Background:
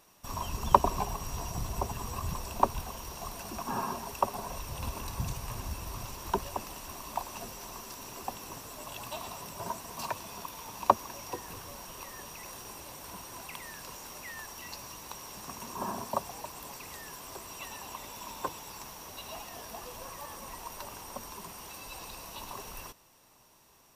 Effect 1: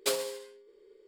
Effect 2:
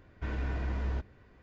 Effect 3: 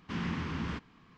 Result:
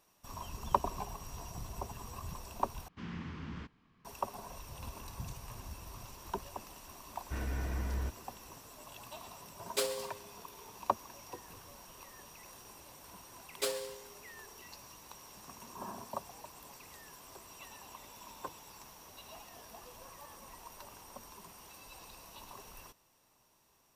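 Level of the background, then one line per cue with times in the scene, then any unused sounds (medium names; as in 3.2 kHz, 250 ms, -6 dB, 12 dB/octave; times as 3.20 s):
background -8.5 dB
2.88 s: replace with 3 -10 dB + bass shelf 150 Hz +4.5 dB
7.09 s: add 2 -3 dB
9.71 s: add 1 -3.5 dB
13.56 s: add 1 -5 dB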